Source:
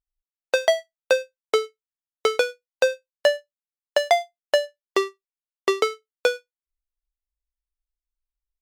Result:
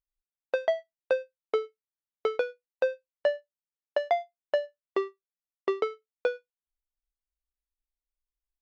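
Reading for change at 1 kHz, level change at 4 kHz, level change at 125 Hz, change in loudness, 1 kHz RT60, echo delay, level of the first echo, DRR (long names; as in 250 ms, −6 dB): −7.5 dB, −16.5 dB, can't be measured, −7.5 dB, no reverb audible, no echo audible, no echo audible, no reverb audible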